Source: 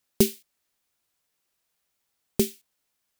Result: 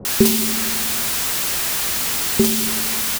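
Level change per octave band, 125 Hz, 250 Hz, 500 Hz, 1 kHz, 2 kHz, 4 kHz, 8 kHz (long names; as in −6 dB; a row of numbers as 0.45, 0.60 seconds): +8.0, +10.0, +6.5, +23.0, +23.0, +18.5, +18.5 decibels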